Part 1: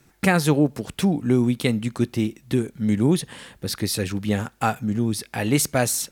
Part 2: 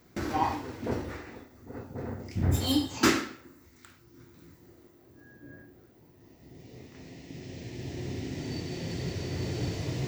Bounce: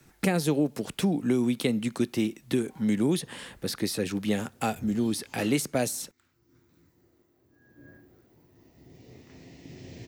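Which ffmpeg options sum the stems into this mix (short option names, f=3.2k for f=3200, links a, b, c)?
-filter_complex "[0:a]acrossover=split=160|700|2000[a][b][c][d];[a]acompressor=threshold=-47dB:ratio=4[e];[b]acompressor=threshold=-21dB:ratio=4[f];[c]acompressor=threshold=-44dB:ratio=4[g];[d]acompressor=threshold=-32dB:ratio=4[h];[e][f][g][h]amix=inputs=4:normalize=0,volume=-0.5dB,asplit=2[i][j];[1:a]adelay=2350,volume=-2.5dB,afade=t=in:st=3.58:d=0.35:silence=0.354813,afade=t=in:st=7.58:d=0.31:silence=0.446684[k];[j]apad=whole_len=548020[l];[k][l]sidechaincompress=threshold=-35dB:ratio=8:attack=16:release=611[m];[i][m]amix=inputs=2:normalize=0"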